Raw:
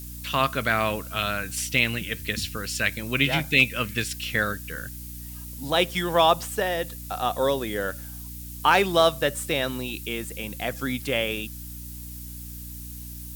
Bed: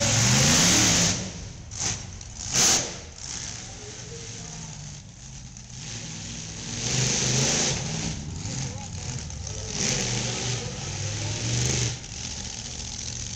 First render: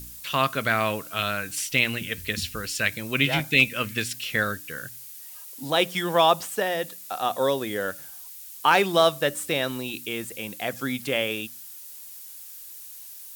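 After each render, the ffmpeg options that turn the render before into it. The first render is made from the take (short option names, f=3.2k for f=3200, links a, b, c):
-af "bandreject=f=60:t=h:w=4,bandreject=f=120:t=h:w=4,bandreject=f=180:t=h:w=4,bandreject=f=240:t=h:w=4,bandreject=f=300:t=h:w=4"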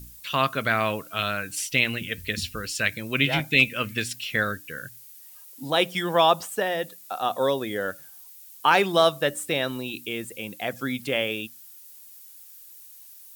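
-af "afftdn=nr=7:nf=-42"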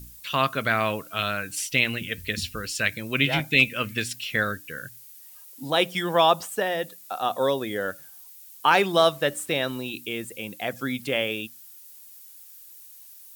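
-filter_complex "[0:a]asettb=1/sr,asplit=3[a][b][c];[a]atrim=end=8.904[d];[b]atrim=start=8.9:end=9.9,asetpts=PTS-STARTPTS,afade=t=in:d=0.004:c=qsin,afade=t=out:st=0.996:d=0.004:c=qsin,aeval=exprs='val(0)*gte(abs(val(0)),0.00531)':c=same[e];[c]atrim=start=9.896[f];[d][e]acrossfade=d=0.004:c1=hsin:c2=qsin[g];[g][f]acrossfade=d=0.004:c1=qsin:c2=hsin"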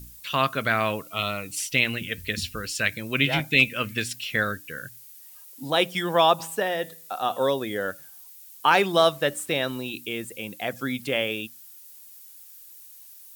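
-filter_complex "[0:a]asettb=1/sr,asplit=3[a][b][c];[a]atrim=end=1.024[d];[b]atrim=start=1.02:end=1.6,asetpts=PTS-STARTPTS,afade=t=in:d=0.004:c=qsin,afade=t=out:st=0.576:d=0.004:c=qsin,asuperstop=centerf=1600:order=4:qfactor=3.3[e];[c]atrim=start=1.596[f];[d][e]acrossfade=d=0.004:c1=hsin:c2=qsin[g];[g][f]acrossfade=d=0.004:c1=qsin:c2=hsin,asplit=3[h][i][j];[h]afade=t=out:st=6.38:d=0.02[k];[i]bandreject=f=163.2:t=h:w=4,bandreject=f=326.4:t=h:w=4,bandreject=f=489.6:t=h:w=4,bandreject=f=652.8:t=h:w=4,bandreject=f=816:t=h:w=4,bandreject=f=979.2:t=h:w=4,bandreject=f=1.1424k:t=h:w=4,bandreject=f=1.3056k:t=h:w=4,bandreject=f=1.4688k:t=h:w=4,bandreject=f=1.632k:t=h:w=4,bandreject=f=1.7952k:t=h:w=4,bandreject=f=1.9584k:t=h:w=4,bandreject=f=2.1216k:t=h:w=4,bandreject=f=2.2848k:t=h:w=4,bandreject=f=2.448k:t=h:w=4,bandreject=f=2.6112k:t=h:w=4,bandreject=f=2.7744k:t=h:w=4,bandreject=f=2.9376k:t=h:w=4,bandreject=f=3.1008k:t=h:w=4,bandreject=f=3.264k:t=h:w=4,bandreject=f=3.4272k:t=h:w=4,bandreject=f=3.5904k:t=h:w=4,bandreject=f=3.7536k:t=h:w=4,bandreject=f=3.9168k:t=h:w=4,bandreject=f=4.08k:t=h:w=4,bandreject=f=4.2432k:t=h:w=4,bandreject=f=4.4064k:t=h:w=4,bandreject=f=4.5696k:t=h:w=4,bandreject=f=4.7328k:t=h:w=4,bandreject=f=4.896k:t=h:w=4,bandreject=f=5.0592k:t=h:w=4,bandreject=f=5.2224k:t=h:w=4,bandreject=f=5.3856k:t=h:w=4,bandreject=f=5.5488k:t=h:w=4,bandreject=f=5.712k:t=h:w=4,bandreject=f=5.8752k:t=h:w=4,afade=t=in:st=6.38:d=0.02,afade=t=out:st=7.47:d=0.02[l];[j]afade=t=in:st=7.47:d=0.02[m];[k][l][m]amix=inputs=3:normalize=0"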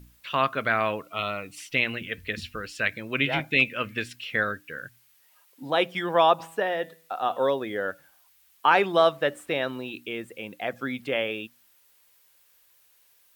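-af "bass=f=250:g=-6,treble=f=4k:g=-15"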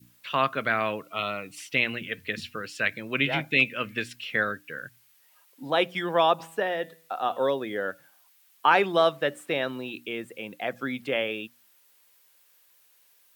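-af "highpass=f=110:w=0.5412,highpass=f=110:w=1.3066,adynamicequalizer=threshold=0.0178:dfrequency=890:dqfactor=0.83:tfrequency=890:tqfactor=0.83:attack=5:release=100:ratio=0.375:range=2:mode=cutabove:tftype=bell"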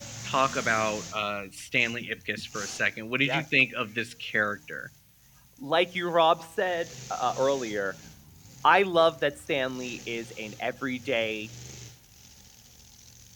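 -filter_complex "[1:a]volume=-19dB[a];[0:a][a]amix=inputs=2:normalize=0"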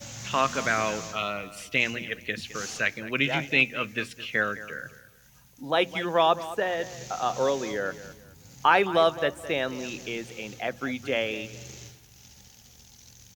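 -filter_complex "[0:a]asplit=2[a][b];[b]adelay=213,lowpass=f=3.3k:p=1,volume=-15dB,asplit=2[c][d];[d]adelay=213,lowpass=f=3.3k:p=1,volume=0.32,asplit=2[e][f];[f]adelay=213,lowpass=f=3.3k:p=1,volume=0.32[g];[a][c][e][g]amix=inputs=4:normalize=0"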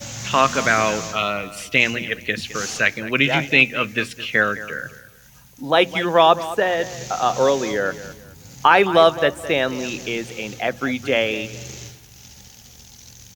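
-af "volume=8dB,alimiter=limit=-1dB:level=0:latency=1"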